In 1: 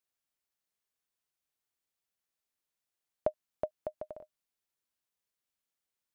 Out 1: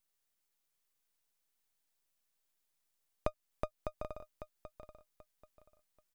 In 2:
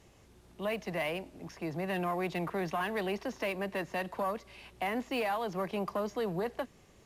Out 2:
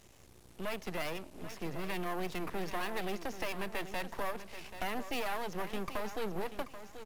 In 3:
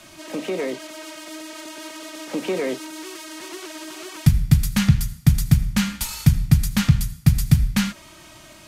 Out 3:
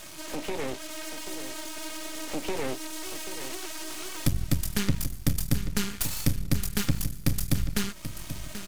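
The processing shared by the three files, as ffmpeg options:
-af "highshelf=f=5800:g=7.5,acompressor=threshold=0.01:ratio=1.5,aeval=exprs='max(val(0),0)':c=same,aecho=1:1:784|1568|2352:0.266|0.0692|0.018,volume=1.58"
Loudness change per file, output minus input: -5.5 LU, -4.0 LU, -10.5 LU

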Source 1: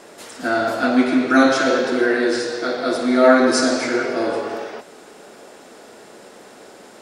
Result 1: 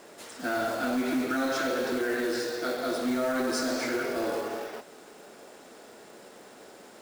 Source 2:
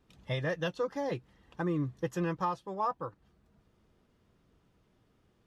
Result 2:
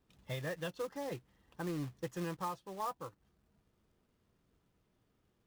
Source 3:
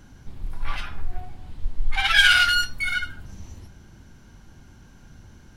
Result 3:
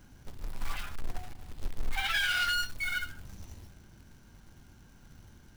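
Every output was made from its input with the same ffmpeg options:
-af "alimiter=limit=0.266:level=0:latency=1:release=60,acrusher=bits=3:mode=log:mix=0:aa=0.000001,asoftclip=type=tanh:threshold=0.2,volume=0.447"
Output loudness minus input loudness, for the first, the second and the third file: -11.5 LU, -7.0 LU, -12.5 LU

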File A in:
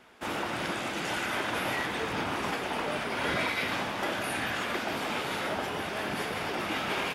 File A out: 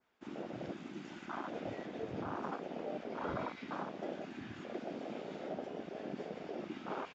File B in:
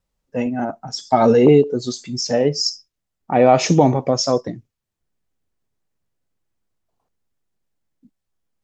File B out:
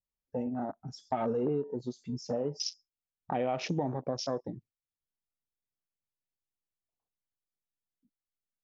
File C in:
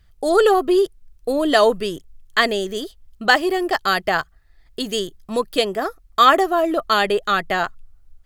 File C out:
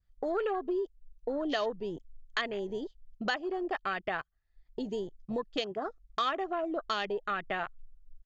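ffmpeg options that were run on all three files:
-af "afwtdn=0.0501,adynamicequalizer=threshold=0.0112:dfrequency=2900:dqfactor=1.7:tfrequency=2900:tqfactor=1.7:attack=5:release=100:ratio=0.375:range=2.5:mode=boostabove:tftype=bell,acompressor=threshold=0.0398:ratio=3,aresample=16000,aresample=44100,volume=0.562"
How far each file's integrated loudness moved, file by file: -12.0 LU, -17.5 LU, -15.5 LU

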